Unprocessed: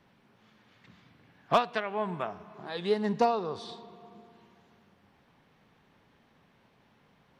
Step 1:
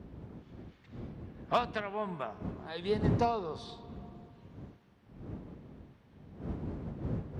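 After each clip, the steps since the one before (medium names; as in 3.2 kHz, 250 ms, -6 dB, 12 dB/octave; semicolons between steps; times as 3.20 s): wind noise 210 Hz -35 dBFS; saturation -11 dBFS, distortion -21 dB; high-pass 55 Hz; trim -4 dB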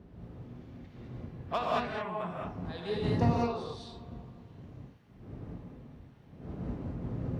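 gated-style reverb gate 240 ms rising, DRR -4 dB; trim -4.5 dB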